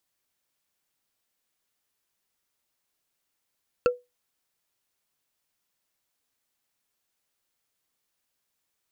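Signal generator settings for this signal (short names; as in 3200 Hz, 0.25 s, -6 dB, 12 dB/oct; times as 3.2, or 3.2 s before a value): wood hit bar, lowest mode 492 Hz, decay 0.21 s, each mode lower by 5.5 dB, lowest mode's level -14 dB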